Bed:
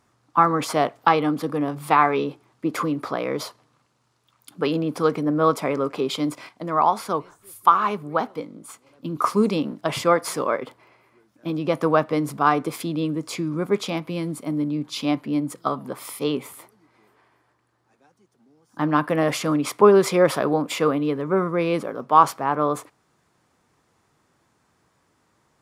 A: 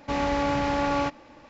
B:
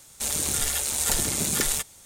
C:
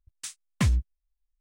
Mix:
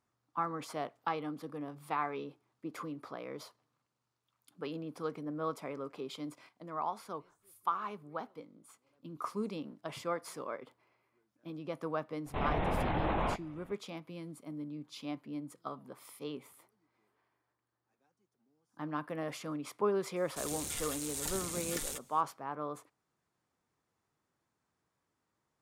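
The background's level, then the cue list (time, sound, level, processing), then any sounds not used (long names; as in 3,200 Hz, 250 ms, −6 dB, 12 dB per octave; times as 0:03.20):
bed −17.5 dB
0:12.26: mix in A −7 dB + linear-prediction vocoder at 8 kHz whisper
0:20.16: mix in B −14 dB
not used: C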